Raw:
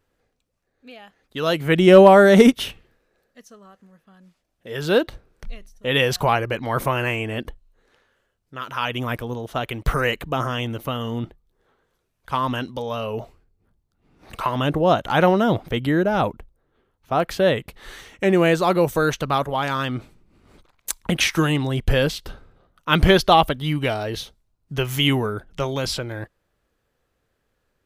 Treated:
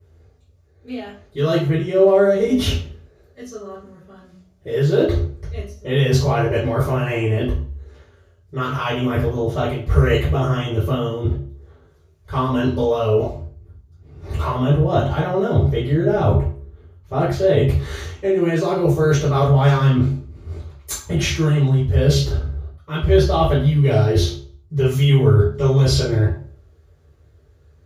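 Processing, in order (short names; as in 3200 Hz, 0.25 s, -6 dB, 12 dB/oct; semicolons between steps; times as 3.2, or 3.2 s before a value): low shelf 300 Hz +12 dB; de-hum 69.17 Hz, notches 7; reverse; compressor 16:1, threshold -22 dBFS, peak gain reduction 23 dB; reverse; reverb RT60 0.45 s, pre-delay 3 ms, DRR -13.5 dB; gain -10 dB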